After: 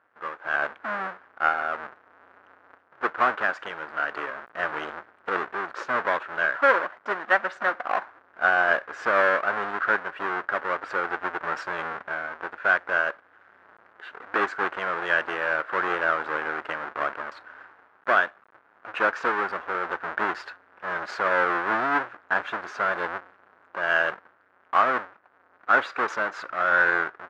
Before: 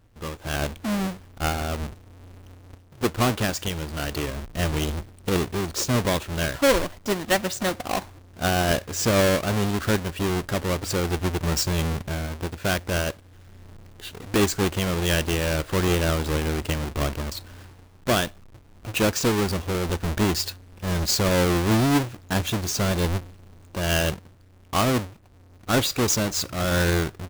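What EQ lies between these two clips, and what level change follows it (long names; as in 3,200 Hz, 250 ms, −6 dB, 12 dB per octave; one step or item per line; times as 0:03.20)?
high-pass filter 620 Hz 12 dB per octave
low-pass with resonance 1,500 Hz, resonance Q 3.2
0.0 dB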